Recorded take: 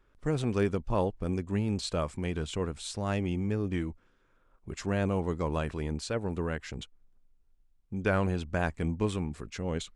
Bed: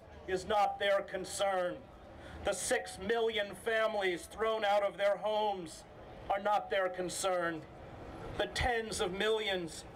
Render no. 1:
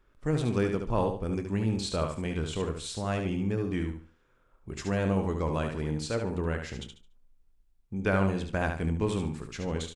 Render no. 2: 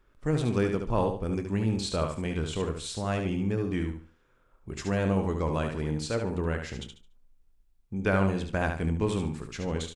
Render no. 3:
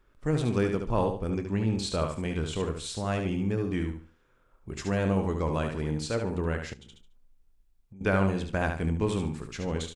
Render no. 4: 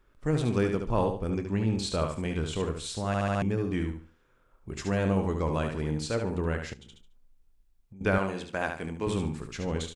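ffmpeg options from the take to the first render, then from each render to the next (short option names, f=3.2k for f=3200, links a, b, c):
-filter_complex "[0:a]asplit=2[a][b];[b]adelay=26,volume=-13dB[c];[a][c]amix=inputs=2:normalize=0,asplit=2[d][e];[e]aecho=0:1:72|144|216|288:0.501|0.14|0.0393|0.011[f];[d][f]amix=inputs=2:normalize=0"
-af "volume=1dB"
-filter_complex "[0:a]asettb=1/sr,asplit=3[a][b][c];[a]atrim=end=1.304[d];[b]atrim=start=1.3:end=1.78,asetpts=PTS-STARTPTS,afade=t=in:d=0.004:c=qsin,afade=t=out:st=0.476:d=0.004:c=qsin,lowpass=6.6k[e];[c]atrim=start=1.776[f];[d][e]acrossfade=d=0.004:c1=hsin:c2=qsin[g];[g][f]acrossfade=d=0.004:c1=qsin:c2=hsin,asettb=1/sr,asplit=3[h][i][j];[h]atrim=end=6.734[k];[i]atrim=start=6.73:end=8.01,asetpts=PTS-STARTPTS,afade=t=in:d=0.004:c=qsin,afade=t=out:st=1.276:d=0.004:c=qsin,acompressor=threshold=-45dB:ratio=16:attack=3.2:release=140:knee=1:detection=peak[l];[j]atrim=start=8.006[m];[k][l]acrossfade=d=0.004:c1=hsin:c2=qsin[n];[n][m]acrossfade=d=0.004:c1=qsin:c2=hsin"
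-filter_complex "[0:a]asettb=1/sr,asplit=3[a][b][c];[a]atrim=end=8.184[d];[b]atrim=start=8.18:end=9.07,asetpts=PTS-STARTPTS,afade=t=in:d=0.004:c=qsin,afade=t=out:st=0.886:d=0.004:c=qsin,highpass=f=410:p=1[e];[c]atrim=start=9.066[f];[d][e]acrossfade=d=0.004:c1=hsin:c2=qsin[g];[g][f]acrossfade=d=0.004:c1=qsin:c2=hsin,asplit=6[h][i][j][k][l][m];[h]atrim=end=3.142[n];[i]atrim=start=3.068:end=3.142[o];[j]atrim=start=3.068:end=3.142[p];[k]atrim=start=3.068:end=3.142[q];[l]atrim=start=3.068:end=3.142[r];[m]atrim=start=3.418[s];[n][o]acrossfade=d=0.004:c1=hsin:c2=hsin[t];[t][p]acrossfade=d=0.004:c1=hsin:c2=hsin[u];[u][q]acrossfade=d=0.004:c1=hsin:c2=hsin[v];[v][r]acrossfade=d=0.004:c1=hsin:c2=hsin[w];[w][s]acrossfade=d=0.004:c1=hsin:c2=hsin"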